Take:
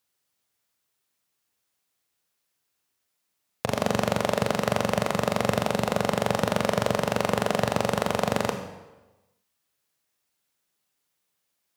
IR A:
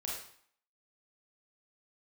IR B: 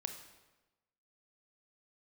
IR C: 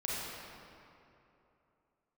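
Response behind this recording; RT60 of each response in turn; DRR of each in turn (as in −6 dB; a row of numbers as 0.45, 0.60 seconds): B; 0.60, 1.1, 2.9 seconds; −4.5, 6.0, −6.5 decibels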